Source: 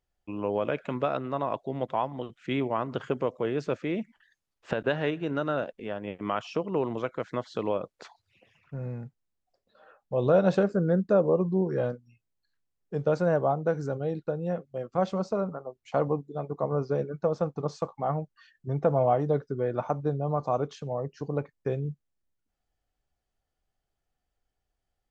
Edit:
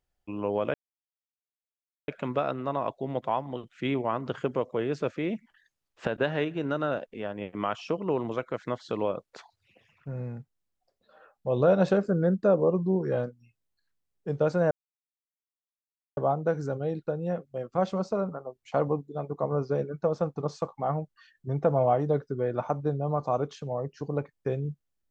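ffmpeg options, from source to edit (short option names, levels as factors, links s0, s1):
-filter_complex "[0:a]asplit=3[s0][s1][s2];[s0]atrim=end=0.74,asetpts=PTS-STARTPTS,afade=t=out:st=0.736:d=0.004:c=hsin,apad=pad_dur=1.34[s3];[s1]atrim=start=0.74:end=13.37,asetpts=PTS-STARTPTS,afade=t=in:d=0.004:c=hsin,afade=t=out:st=12.626:d=0.004:c=hsin,apad=pad_dur=1.46[s4];[s2]atrim=start=13.37,asetpts=PTS-STARTPTS,afade=t=in:d=0.004:c=hsin[s5];[s3][s4][s5]concat=n=3:v=0:a=1"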